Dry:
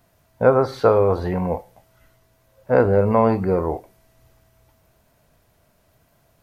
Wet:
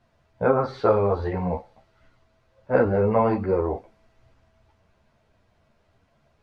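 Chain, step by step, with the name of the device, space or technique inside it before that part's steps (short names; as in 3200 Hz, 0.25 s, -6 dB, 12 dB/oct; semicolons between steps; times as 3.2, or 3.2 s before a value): string-machine ensemble chorus (ensemble effect; LPF 4200 Hz 12 dB/oct); thin delay 0.157 s, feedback 80%, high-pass 3700 Hz, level -23 dB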